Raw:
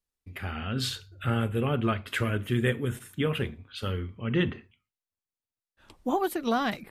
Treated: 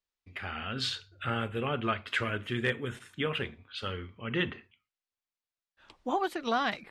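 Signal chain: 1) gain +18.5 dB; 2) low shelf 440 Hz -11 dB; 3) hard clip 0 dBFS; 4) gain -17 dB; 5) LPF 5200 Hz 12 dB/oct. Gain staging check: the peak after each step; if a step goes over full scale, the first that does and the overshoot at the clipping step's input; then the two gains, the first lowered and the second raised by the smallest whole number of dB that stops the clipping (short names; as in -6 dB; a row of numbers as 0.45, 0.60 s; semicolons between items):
+7.5, +3.5, 0.0, -17.0, -16.5 dBFS; step 1, 3.5 dB; step 1 +14.5 dB, step 4 -13 dB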